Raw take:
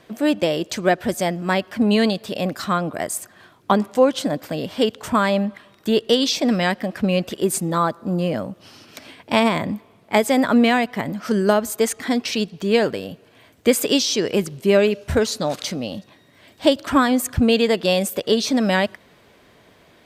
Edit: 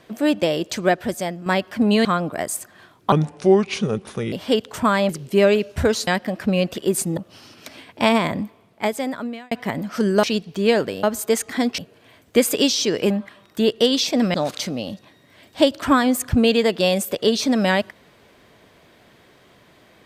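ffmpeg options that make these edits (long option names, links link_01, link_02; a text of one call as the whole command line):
ffmpeg -i in.wav -filter_complex "[0:a]asplit=14[link_01][link_02][link_03][link_04][link_05][link_06][link_07][link_08][link_09][link_10][link_11][link_12][link_13][link_14];[link_01]atrim=end=1.46,asetpts=PTS-STARTPTS,afade=type=out:start_time=0.85:duration=0.61:silence=0.421697[link_15];[link_02]atrim=start=1.46:end=2.052,asetpts=PTS-STARTPTS,afade=type=in:duration=0.004:curve=hsin:silence=0.421697[link_16];[link_03]atrim=start=2.658:end=3.734[link_17];[link_04]atrim=start=3.73:end=4.62,asetpts=PTS-STARTPTS,asetrate=32634,aresample=44100,atrim=end_sample=53039,asetpts=PTS-STARTPTS[link_18];[link_05]atrim=start=4.616:end=5.392[link_19];[link_06]atrim=start=14.408:end=15.392[link_20];[link_07]atrim=start=6.628:end=7.732[link_21];[link_08]atrim=start=8.478:end=10.82,asetpts=PTS-STARTPTS,afade=type=out:start_time=1.162:duration=1.18[link_22];[link_09]atrim=start=10.82:end=11.542,asetpts=PTS-STARTPTS,afade=type=in:duration=0.004:curve=hsin[link_23];[link_10]atrim=start=12.288:end=13.092[link_24];[link_11]atrim=start=11.538:end=12.292[link_25];[link_12]atrim=start=13.088:end=14.412[link_26];[link_13]atrim=start=5.388:end=6.632[link_27];[link_14]atrim=start=15.388[link_28];[link_15][link_16]concat=n=2:v=0:a=1[link_29];[link_29][link_17]acrossfade=duration=0.004:curve1=hsin:curve2=hsin[link_30];[link_30][link_18]acrossfade=duration=0.004:curve1=hsin:curve2=hsin[link_31];[link_31][link_19]acrossfade=duration=0.004:curve1=hsin:curve2=hsin[link_32];[link_32][link_20]acrossfade=duration=0.004:curve1=hsin:curve2=hsin[link_33];[link_33][link_21]acrossfade=duration=0.004:curve1=hsin:curve2=hsin[link_34];[link_22][link_23]concat=n=2:v=0:a=1[link_35];[link_34][link_35]acrossfade=duration=0.004:curve1=hsin:curve2=hsin[link_36];[link_36][link_24]acrossfade=duration=0.004:curve1=hsin:curve2=hsin[link_37];[link_37][link_25]acrossfade=duration=0.004:curve1=hsin:curve2=hsin[link_38];[link_38][link_26]acrossfade=duration=0.004:curve1=hsin:curve2=hsin[link_39];[link_39][link_27]acrossfade=duration=0.004:curve1=hsin:curve2=hsin[link_40];[link_40][link_28]acrossfade=duration=0.004:curve1=hsin:curve2=hsin" out.wav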